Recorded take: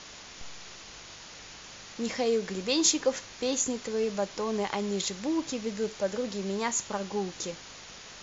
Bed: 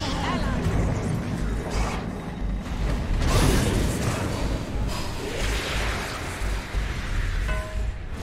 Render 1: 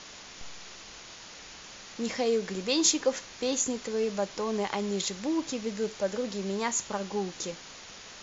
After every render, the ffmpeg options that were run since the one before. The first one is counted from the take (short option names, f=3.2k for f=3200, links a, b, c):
-af "bandreject=f=50:t=h:w=4,bandreject=f=100:t=h:w=4,bandreject=f=150:t=h:w=4"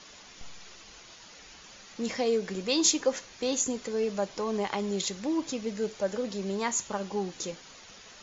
-af "afftdn=nr=7:nf=-47"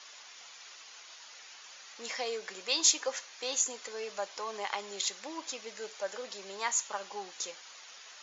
-af "highpass=810"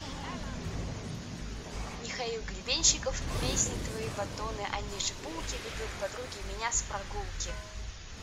-filter_complex "[1:a]volume=-13.5dB[a];[0:a][a]amix=inputs=2:normalize=0"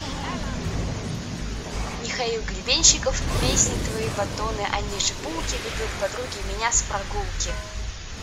-af "volume=9.5dB,alimiter=limit=-2dB:level=0:latency=1"